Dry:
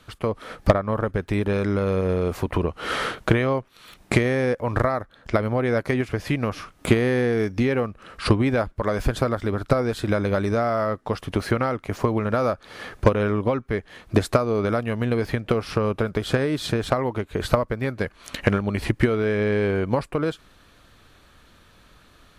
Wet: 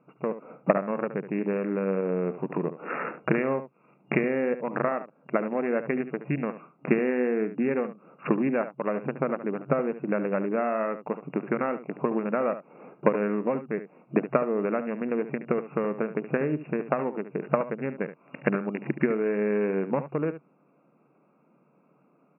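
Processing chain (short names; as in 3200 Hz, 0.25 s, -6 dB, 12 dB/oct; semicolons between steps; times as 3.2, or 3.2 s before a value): Wiener smoothing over 25 samples; echo 72 ms -12 dB; FFT band-pass 130–2800 Hz; gain -3.5 dB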